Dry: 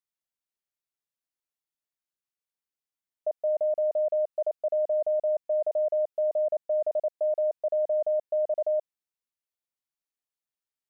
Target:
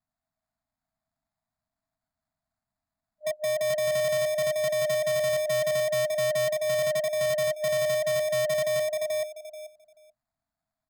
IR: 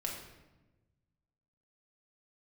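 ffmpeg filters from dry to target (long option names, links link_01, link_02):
-af "aecho=1:1:434|868|1302:0.631|0.107|0.0182,acrusher=samples=15:mix=1:aa=0.000001,afftfilt=real='re*(1-between(b*sr/4096,300,610))':imag='im*(1-between(b*sr/4096,300,610))':win_size=4096:overlap=0.75,equalizer=frequency=660:width_type=o:width=0.25:gain=11.5,asoftclip=type=tanh:threshold=-23dB,bass=frequency=250:gain=8,treble=frequency=4000:gain=5,volume=-1dB"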